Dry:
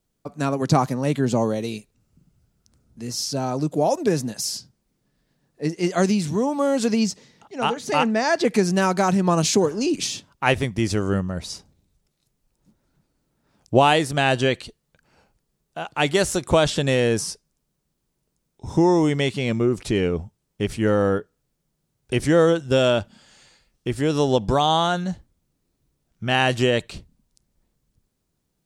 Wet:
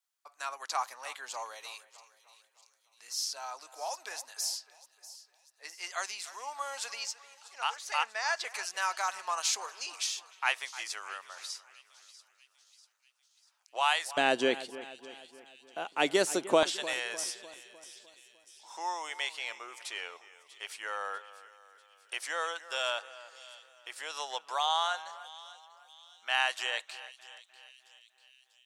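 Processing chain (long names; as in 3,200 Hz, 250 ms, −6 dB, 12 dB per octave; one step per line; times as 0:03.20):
high-pass filter 920 Hz 24 dB per octave, from 0:14.17 250 Hz, from 0:16.63 840 Hz
echo with a time of its own for lows and highs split 2,800 Hz, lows 302 ms, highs 643 ms, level −16 dB
level −6.5 dB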